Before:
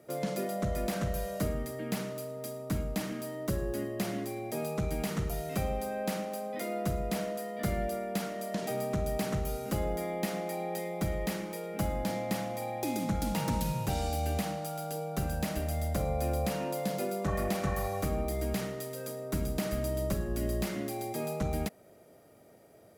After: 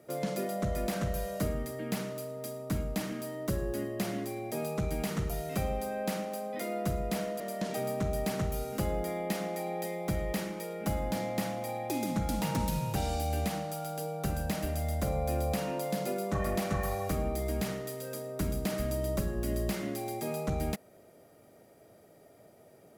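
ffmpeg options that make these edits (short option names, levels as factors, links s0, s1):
-filter_complex "[0:a]asplit=2[s0][s1];[s0]atrim=end=7.402[s2];[s1]atrim=start=8.328[s3];[s2][s3]acrossfade=d=0.004:c1=hsin:c2=hsin"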